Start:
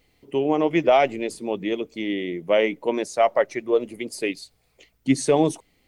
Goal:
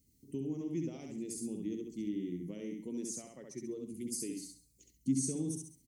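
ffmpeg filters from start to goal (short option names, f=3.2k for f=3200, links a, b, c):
-filter_complex "[0:a]highpass=51,asplit=2[a][b];[b]aecho=0:1:67|134|201|268:0.631|0.183|0.0531|0.0154[c];[a][c]amix=inputs=2:normalize=0,acompressor=threshold=-27dB:ratio=2,firequalizer=gain_entry='entry(250,0);entry(620,-29);entry(3300,-19);entry(6100,3)':delay=0.05:min_phase=1,asplit=2[d][e];[e]aecho=0:1:135:0.0891[f];[d][f]amix=inputs=2:normalize=0,volume=-4dB"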